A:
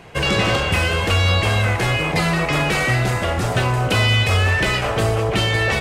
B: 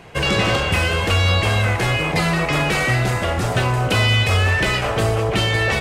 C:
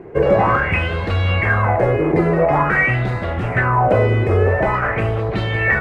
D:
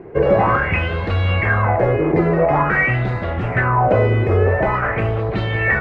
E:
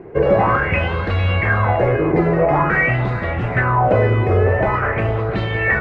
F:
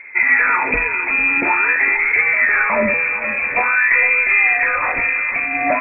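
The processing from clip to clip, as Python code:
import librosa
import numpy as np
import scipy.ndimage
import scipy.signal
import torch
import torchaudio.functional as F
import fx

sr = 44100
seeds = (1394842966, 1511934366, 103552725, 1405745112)

y1 = x
y2 = fx.curve_eq(y1, sr, hz=(260.0, 2000.0, 3300.0), db=(0, -6, -24))
y2 = fx.bell_lfo(y2, sr, hz=0.47, low_hz=360.0, high_hz=4000.0, db=18)
y3 = fx.air_absorb(y2, sr, metres=91.0)
y4 = y3 + 10.0 ** (-13.5 / 20.0) * np.pad(y3, (int(452 * sr / 1000.0), 0))[:len(y3)]
y5 = fx.freq_invert(y4, sr, carrier_hz=2500)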